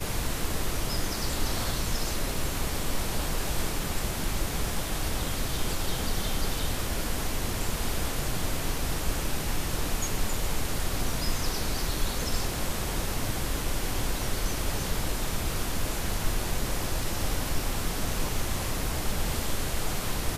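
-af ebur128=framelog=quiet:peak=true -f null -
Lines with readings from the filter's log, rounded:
Integrated loudness:
  I:         -30.9 LUFS
  Threshold: -40.9 LUFS
Loudness range:
  LRA:         0.4 LU
  Threshold: -50.9 LUFS
  LRA low:   -31.0 LUFS
  LRA high:  -30.6 LUFS
True peak:
  Peak:      -14.0 dBFS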